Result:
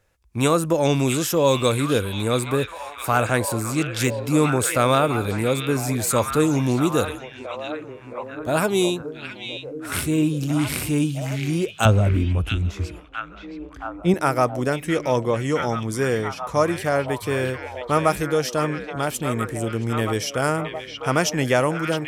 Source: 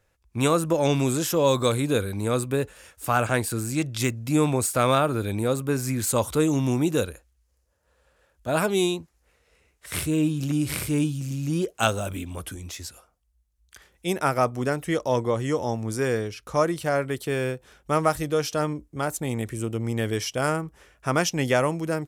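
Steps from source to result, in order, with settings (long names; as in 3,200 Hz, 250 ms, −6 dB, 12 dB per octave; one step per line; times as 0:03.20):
0:11.85–0:14.14: RIAA equalisation playback
echo through a band-pass that steps 671 ms, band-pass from 2,700 Hz, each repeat −0.7 octaves, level −2 dB
level +2.5 dB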